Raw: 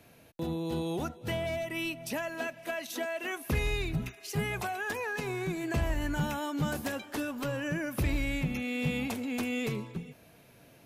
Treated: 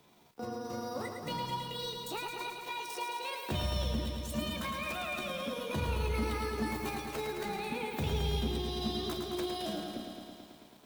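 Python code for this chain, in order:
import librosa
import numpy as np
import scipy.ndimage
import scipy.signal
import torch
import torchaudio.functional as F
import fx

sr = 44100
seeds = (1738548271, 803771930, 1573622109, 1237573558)

y = fx.pitch_heads(x, sr, semitones=6.5)
y = fx.echo_crushed(y, sr, ms=109, feedback_pct=80, bits=10, wet_db=-5.5)
y = y * 10.0 ** (-4.0 / 20.0)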